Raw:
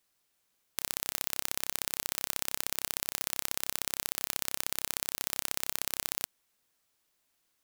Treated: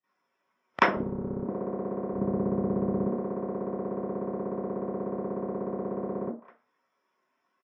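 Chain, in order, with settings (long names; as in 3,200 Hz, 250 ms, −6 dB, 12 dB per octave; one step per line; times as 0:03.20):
high-pass filter 66 Hz 24 dB per octave
0:00.95–0:01.40: wrap-around overflow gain 5.5 dB
0:02.13–0:03.07: low-shelf EQ 180 Hz +11.5 dB
single-tap delay 211 ms −23 dB
treble cut that deepens with the level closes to 360 Hz, closed at −45 dBFS
convolution reverb RT60 0.45 s, pre-delay 31 ms, DRR −15 dB
every bin expanded away from the loudest bin 1.5 to 1
level +8.5 dB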